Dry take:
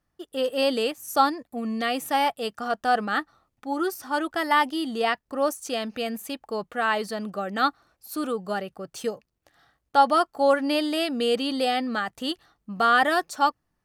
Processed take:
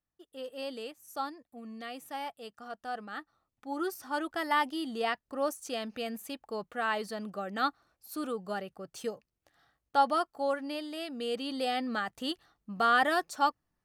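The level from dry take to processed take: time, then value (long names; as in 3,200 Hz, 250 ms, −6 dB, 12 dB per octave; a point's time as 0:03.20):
0:03.12 −15.5 dB
0:03.82 −7 dB
0:10.02 −7 dB
0:10.87 −14 dB
0:11.90 −5.5 dB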